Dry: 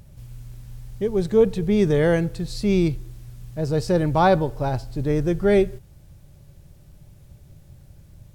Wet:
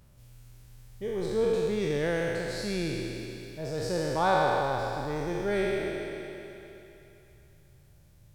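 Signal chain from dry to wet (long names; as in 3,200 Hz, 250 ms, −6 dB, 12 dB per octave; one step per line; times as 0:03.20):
peak hold with a decay on every bin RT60 2.94 s
low-shelf EQ 460 Hz −6.5 dB
on a send: feedback echo with a high-pass in the loop 128 ms, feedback 77%, high-pass 250 Hz, level −14 dB
on the sum: level −9 dB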